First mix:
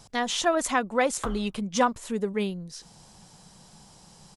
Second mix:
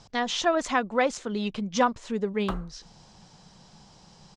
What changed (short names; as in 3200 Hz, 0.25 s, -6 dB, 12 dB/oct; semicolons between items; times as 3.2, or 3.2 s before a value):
speech: add LPF 6200 Hz 24 dB/oct; background: entry +1.25 s